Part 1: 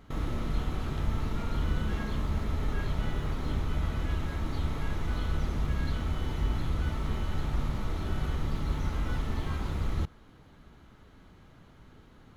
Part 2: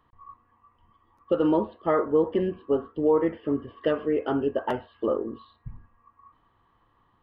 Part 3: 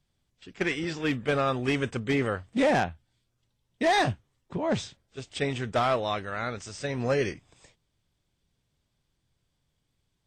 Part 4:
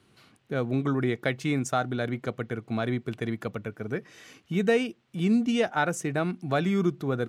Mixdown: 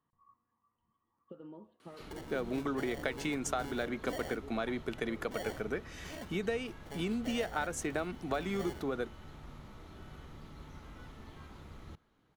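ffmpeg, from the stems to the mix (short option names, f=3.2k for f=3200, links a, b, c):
-filter_complex "[0:a]adelay=1900,volume=-14dB[a];[1:a]acompressor=threshold=-31dB:ratio=6,equalizer=f=170:w=1.2:g=11,volume=-18.5dB[b];[2:a]acrusher=samples=35:mix=1:aa=0.000001,adelay=1500,volume=-19dB[c];[3:a]highpass=240,acompressor=threshold=-31dB:ratio=10,adelay=1800,volume=1dB[d];[a][b][c][d]amix=inputs=4:normalize=0,lowshelf=f=97:g=-10"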